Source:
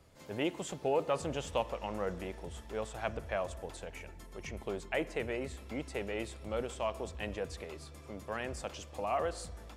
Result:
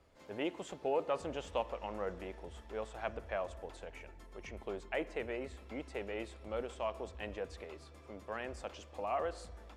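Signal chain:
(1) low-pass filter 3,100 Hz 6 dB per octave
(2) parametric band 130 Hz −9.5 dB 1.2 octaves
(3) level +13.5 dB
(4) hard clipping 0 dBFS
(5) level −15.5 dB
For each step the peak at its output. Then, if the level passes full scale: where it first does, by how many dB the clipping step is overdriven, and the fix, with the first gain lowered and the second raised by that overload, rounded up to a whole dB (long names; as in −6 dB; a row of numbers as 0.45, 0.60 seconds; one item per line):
−17.5, −18.5, −5.0, −5.0, −20.5 dBFS
no step passes full scale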